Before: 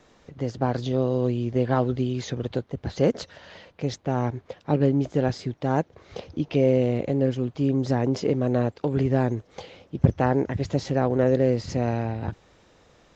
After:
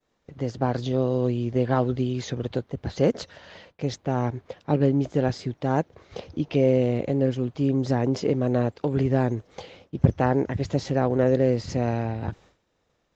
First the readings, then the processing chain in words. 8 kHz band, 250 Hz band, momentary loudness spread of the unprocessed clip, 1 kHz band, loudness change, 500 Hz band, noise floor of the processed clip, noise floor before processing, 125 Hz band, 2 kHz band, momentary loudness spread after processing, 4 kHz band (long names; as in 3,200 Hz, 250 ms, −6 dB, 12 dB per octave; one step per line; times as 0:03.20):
can't be measured, 0.0 dB, 12 LU, 0.0 dB, 0.0 dB, 0.0 dB, −72 dBFS, −58 dBFS, 0.0 dB, 0.0 dB, 12 LU, 0.0 dB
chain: downward expander −46 dBFS